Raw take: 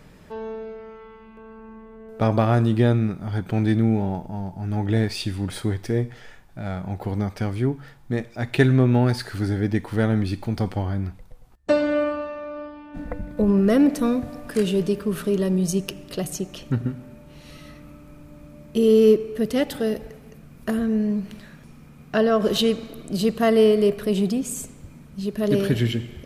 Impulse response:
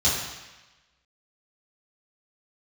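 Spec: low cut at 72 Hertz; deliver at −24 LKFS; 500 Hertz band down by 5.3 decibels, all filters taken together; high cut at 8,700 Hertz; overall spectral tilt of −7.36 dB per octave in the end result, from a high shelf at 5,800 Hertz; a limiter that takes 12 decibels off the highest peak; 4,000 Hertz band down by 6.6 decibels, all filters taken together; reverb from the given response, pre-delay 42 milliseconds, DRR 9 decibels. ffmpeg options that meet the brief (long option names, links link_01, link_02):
-filter_complex "[0:a]highpass=72,lowpass=8700,equalizer=frequency=500:width_type=o:gain=-6.5,equalizer=frequency=4000:width_type=o:gain=-7.5,highshelf=frequency=5800:gain=-3.5,alimiter=limit=-19dB:level=0:latency=1,asplit=2[link_01][link_02];[1:a]atrim=start_sample=2205,adelay=42[link_03];[link_02][link_03]afir=irnorm=-1:irlink=0,volume=-23dB[link_04];[link_01][link_04]amix=inputs=2:normalize=0,volume=4dB"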